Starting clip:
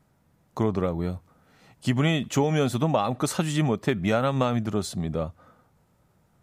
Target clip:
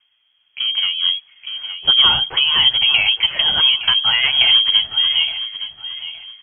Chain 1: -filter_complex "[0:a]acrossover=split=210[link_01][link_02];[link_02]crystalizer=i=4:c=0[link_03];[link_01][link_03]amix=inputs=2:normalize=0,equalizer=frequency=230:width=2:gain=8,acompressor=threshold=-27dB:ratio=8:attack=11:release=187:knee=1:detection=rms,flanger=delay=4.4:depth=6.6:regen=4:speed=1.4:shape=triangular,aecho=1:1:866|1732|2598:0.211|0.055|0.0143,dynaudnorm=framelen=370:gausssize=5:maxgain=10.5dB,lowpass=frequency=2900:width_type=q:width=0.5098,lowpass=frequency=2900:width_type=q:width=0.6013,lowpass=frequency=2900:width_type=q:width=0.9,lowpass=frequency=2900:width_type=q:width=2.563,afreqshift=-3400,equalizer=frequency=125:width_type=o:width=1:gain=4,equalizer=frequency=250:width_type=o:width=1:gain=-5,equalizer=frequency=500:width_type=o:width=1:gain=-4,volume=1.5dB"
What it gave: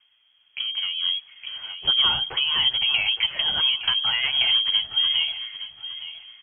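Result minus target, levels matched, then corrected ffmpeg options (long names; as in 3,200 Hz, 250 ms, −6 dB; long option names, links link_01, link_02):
downward compressor: peak gain reduction +9 dB
-filter_complex "[0:a]acrossover=split=210[link_01][link_02];[link_02]crystalizer=i=4:c=0[link_03];[link_01][link_03]amix=inputs=2:normalize=0,equalizer=frequency=230:width=2:gain=8,acompressor=threshold=-16.5dB:ratio=8:attack=11:release=187:knee=1:detection=rms,flanger=delay=4.4:depth=6.6:regen=4:speed=1.4:shape=triangular,aecho=1:1:866|1732|2598:0.211|0.055|0.0143,dynaudnorm=framelen=370:gausssize=5:maxgain=10.5dB,lowpass=frequency=2900:width_type=q:width=0.5098,lowpass=frequency=2900:width_type=q:width=0.6013,lowpass=frequency=2900:width_type=q:width=0.9,lowpass=frequency=2900:width_type=q:width=2.563,afreqshift=-3400,equalizer=frequency=125:width_type=o:width=1:gain=4,equalizer=frequency=250:width_type=o:width=1:gain=-5,equalizer=frequency=500:width_type=o:width=1:gain=-4,volume=1.5dB"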